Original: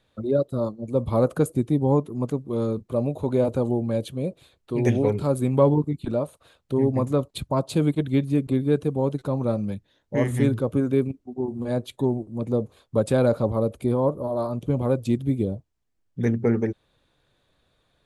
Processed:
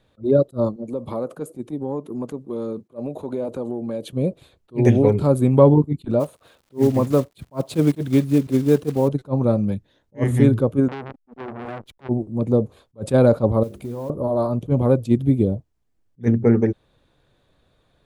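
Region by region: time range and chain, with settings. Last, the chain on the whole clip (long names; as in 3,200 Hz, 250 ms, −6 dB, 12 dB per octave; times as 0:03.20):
0:00.76–0:04.13: high-pass filter 220 Hz + downward compressor 3 to 1, threshold −31 dBFS
0:06.19–0:09.07: one scale factor per block 5 bits + low-shelf EQ 87 Hz −11.5 dB + surface crackle 110 per second −48 dBFS
0:10.88–0:12.09: downward compressor, threshold −26 dBFS + slack as between gear wheels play −41 dBFS + saturating transformer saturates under 1,700 Hz
0:13.63–0:14.10: mains-hum notches 50/100/150/200/250/300/350/400 Hz + downward compressor 5 to 1, threshold −33 dBFS + noise that follows the level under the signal 22 dB
whole clip: tilt shelving filter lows +3 dB, about 1,100 Hz; level that may rise only so fast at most 390 dB per second; level +3.5 dB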